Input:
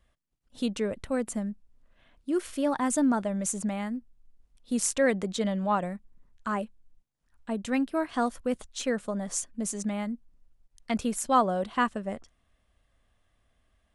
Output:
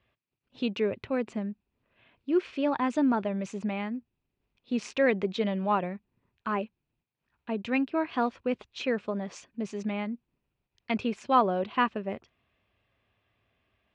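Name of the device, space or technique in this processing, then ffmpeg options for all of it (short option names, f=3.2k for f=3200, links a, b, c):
guitar cabinet: -af "highpass=94,equalizer=f=110:t=q:w=4:g=7,equalizer=f=390:t=q:w=4:g=7,equalizer=f=960:t=q:w=4:g=3,equalizer=f=2.5k:t=q:w=4:g=10,lowpass=f=4.5k:w=0.5412,lowpass=f=4.5k:w=1.3066,volume=-1.5dB"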